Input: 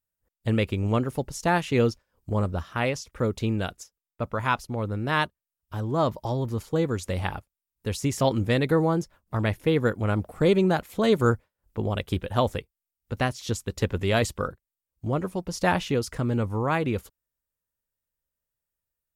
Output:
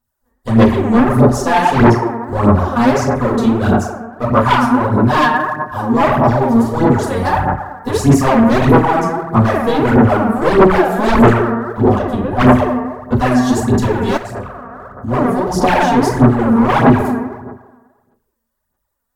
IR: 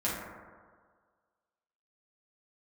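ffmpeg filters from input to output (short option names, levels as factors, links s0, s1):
-filter_complex "[0:a]asettb=1/sr,asplit=3[s0][s1][s2];[s0]atrim=end=7.244[s3];[s1]atrim=start=7.24:end=7.9,asetpts=PTS-STARTPTS,afade=t=in:d=0.004:c=qsin,afade=t=out:st=0.656:d=0.004:c=qsin,aecho=1:1:6.6:0.8,atrim=end_sample=29106[s4];[s2]atrim=start=7.896[s5];[s3][s4]acrossfade=d=0.004:c1=hsin:c2=qsin[s6];[s6][s5]acrossfade=d=0.004:c1=qsin:c2=hsin,aeval=exprs='clip(val(0),-1,0.0531)':c=same,equalizer=f=100:t=o:w=0.67:g=-5,equalizer=f=1000:t=o:w=0.67:g=7,equalizer=f=2500:t=o:w=0.67:g=-8[s7];[1:a]atrim=start_sample=2205,asetrate=52920,aresample=44100[s8];[s7][s8]afir=irnorm=-1:irlink=0,aeval=exprs='0.668*sin(PI/2*2.82*val(0)/0.668)':c=same,asplit=3[s9][s10][s11];[s9]afade=t=out:st=14.16:d=0.02[s12];[s10]acompressor=threshold=0.0794:ratio=8,afade=t=in:st=14.16:d=0.02,afade=t=out:st=15.07:d=0.02[s13];[s11]afade=t=in:st=15.07:d=0.02[s14];[s12][s13][s14]amix=inputs=3:normalize=0,aphaser=in_gain=1:out_gain=1:delay=4.4:decay=0.61:speed=1.6:type=sinusoidal,asplit=3[s15][s16][s17];[s15]afade=t=out:st=11.97:d=0.02[s18];[s16]highshelf=f=2000:g=-12,afade=t=in:st=11.97:d=0.02,afade=t=out:st=12.39:d=0.02[s19];[s17]afade=t=in:st=12.39:d=0.02[s20];[s18][s19][s20]amix=inputs=3:normalize=0,volume=0.501"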